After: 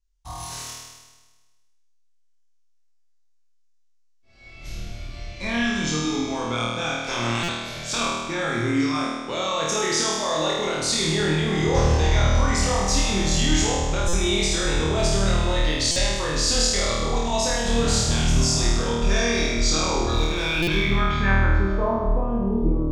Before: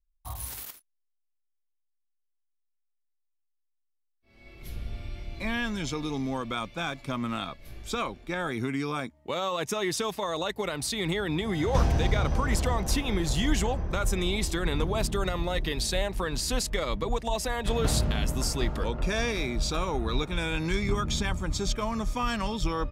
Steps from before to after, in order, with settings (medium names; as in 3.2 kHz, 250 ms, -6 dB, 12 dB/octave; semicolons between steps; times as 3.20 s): 7.05–7.96 s: spectral peaks clipped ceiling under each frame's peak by 21 dB; in parallel at -3 dB: peak limiter -21.5 dBFS, peak gain reduction 11 dB; on the sum: low-pass sweep 6.5 kHz -> 350 Hz, 20.29–22.43 s; 20.08–20.75 s: hard clipper -16.5 dBFS, distortion -35 dB; on a send: flutter echo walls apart 4.4 m, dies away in 1.3 s; on the sum: buffer glitch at 7.43/14.08/15.91/20.62 s, samples 256, times 8; trim -4 dB